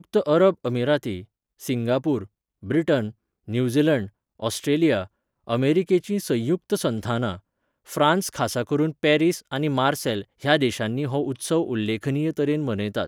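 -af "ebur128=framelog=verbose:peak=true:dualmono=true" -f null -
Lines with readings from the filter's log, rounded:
Integrated loudness:
  I:         -20.4 LUFS
  Threshold: -30.9 LUFS
Loudness range:
  LRA:         2.1 LU
  Threshold: -41.0 LUFS
  LRA low:   -22.1 LUFS
  LRA high:  -20.0 LUFS
True peak:
  Peak:       -3.8 dBFS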